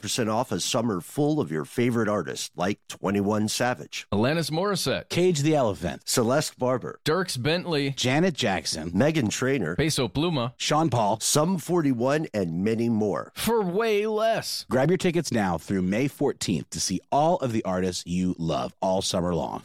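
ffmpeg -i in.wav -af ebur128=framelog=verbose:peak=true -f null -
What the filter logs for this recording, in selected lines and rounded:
Integrated loudness:
  I:         -25.2 LUFS
  Threshold: -35.2 LUFS
Loudness range:
  LRA:         2.1 LU
  Threshold: -45.1 LUFS
  LRA low:   -26.3 LUFS
  LRA high:  -24.2 LUFS
True peak:
  Peak:       -8.7 dBFS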